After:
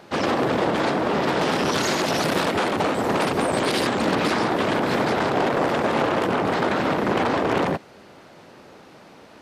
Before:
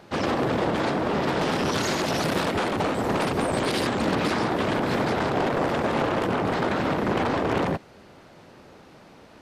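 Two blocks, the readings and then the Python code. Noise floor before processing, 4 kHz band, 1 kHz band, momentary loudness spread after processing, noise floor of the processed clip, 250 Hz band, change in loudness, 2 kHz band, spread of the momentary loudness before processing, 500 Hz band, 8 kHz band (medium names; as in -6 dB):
-50 dBFS, +3.5 dB, +3.5 dB, 1 LU, -48 dBFS, +2.0 dB, +3.0 dB, +3.5 dB, 1 LU, +3.0 dB, +3.5 dB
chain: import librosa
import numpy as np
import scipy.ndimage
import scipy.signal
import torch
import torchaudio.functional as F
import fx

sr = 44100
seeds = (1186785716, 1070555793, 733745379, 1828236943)

y = fx.low_shelf(x, sr, hz=99.0, db=-11.5)
y = y * librosa.db_to_amplitude(3.5)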